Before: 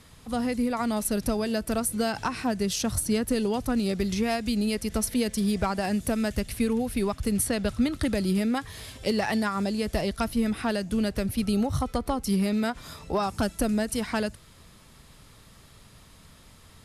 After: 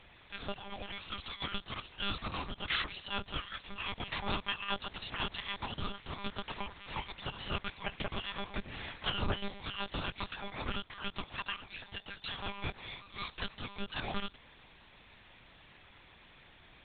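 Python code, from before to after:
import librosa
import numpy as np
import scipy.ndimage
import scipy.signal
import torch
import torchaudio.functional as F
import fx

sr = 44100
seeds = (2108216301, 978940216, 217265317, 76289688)

y = fx.band_shuffle(x, sr, order='2341')
y = fx.highpass(y, sr, hz=69.0, slope=6)
y = fx.lpc_monotone(y, sr, seeds[0], pitch_hz=200.0, order=8)
y = fx.band_squash(y, sr, depth_pct=70, at=(6.26, 7.54))
y = F.gain(torch.from_numpy(y), 2.0).numpy()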